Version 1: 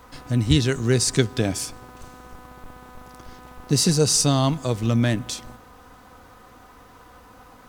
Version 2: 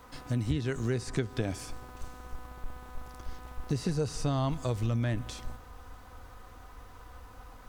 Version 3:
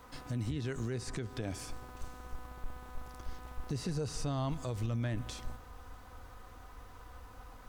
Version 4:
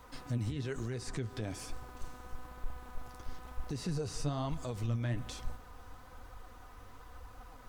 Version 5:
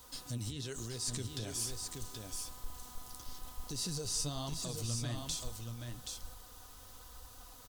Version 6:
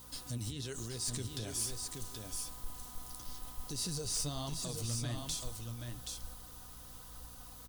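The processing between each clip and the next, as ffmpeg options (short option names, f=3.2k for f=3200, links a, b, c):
-filter_complex "[0:a]acrossover=split=2500[a][b];[b]acompressor=threshold=-38dB:ratio=4:attack=1:release=60[c];[a][c]amix=inputs=2:normalize=0,asubboost=boost=5:cutoff=80,acompressor=threshold=-22dB:ratio=4,volume=-4.5dB"
-af "alimiter=level_in=1dB:limit=-24dB:level=0:latency=1:release=70,volume=-1dB,volume=-2dB"
-af "flanger=delay=0.8:depth=9.9:regen=50:speed=1.1:shape=triangular,volume=3.5dB"
-filter_complex "[0:a]aexciter=amount=5.9:drive=3.4:freq=3.1k,asplit=2[a][b];[b]aecho=0:1:777:0.562[c];[a][c]amix=inputs=2:normalize=0,volume=-5.5dB"
-af "aeval=exprs='val(0)+0.00141*(sin(2*PI*60*n/s)+sin(2*PI*2*60*n/s)/2+sin(2*PI*3*60*n/s)/3+sin(2*PI*4*60*n/s)/4+sin(2*PI*5*60*n/s)/5)':c=same,asoftclip=type=hard:threshold=-30dB,aexciter=amount=1.5:drive=4:freq=9.6k"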